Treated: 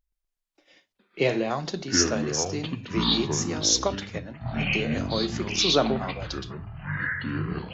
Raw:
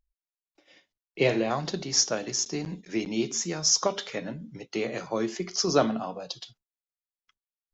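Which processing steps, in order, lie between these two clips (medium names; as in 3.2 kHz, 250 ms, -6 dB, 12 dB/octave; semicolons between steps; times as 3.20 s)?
ever faster or slower copies 123 ms, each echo -7 st, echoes 3; 3.95–4.91 s: upward expansion 1.5:1, over -36 dBFS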